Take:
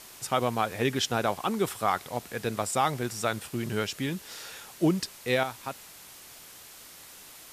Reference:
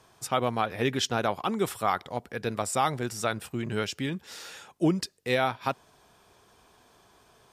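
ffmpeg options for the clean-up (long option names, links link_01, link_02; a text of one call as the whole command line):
ffmpeg -i in.wav -af "afwtdn=0.0045,asetnsamples=nb_out_samples=441:pad=0,asendcmd='5.43 volume volume 7.5dB',volume=0dB" out.wav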